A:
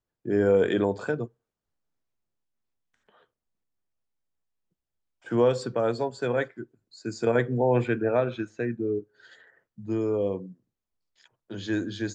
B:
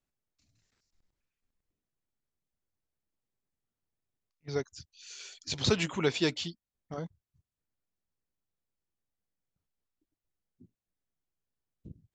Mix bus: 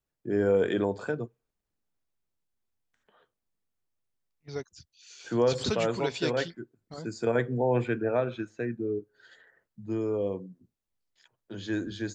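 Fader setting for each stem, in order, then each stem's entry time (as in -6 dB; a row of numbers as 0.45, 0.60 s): -3.0, -3.5 dB; 0.00, 0.00 s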